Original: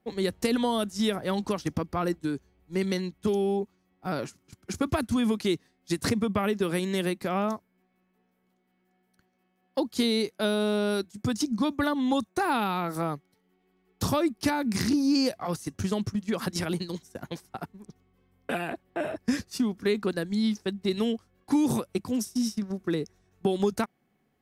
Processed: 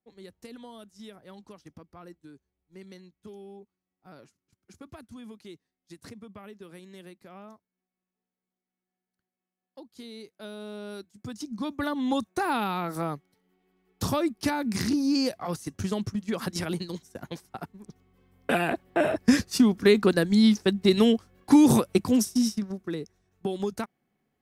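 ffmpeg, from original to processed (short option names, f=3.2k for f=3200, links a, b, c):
-af "volume=7dB,afade=t=in:st=10.01:d=1.39:silence=0.354813,afade=t=in:st=11.4:d=0.71:silence=0.354813,afade=t=in:st=17.67:d=1.17:silence=0.398107,afade=t=out:st=22.07:d=0.76:silence=0.266073"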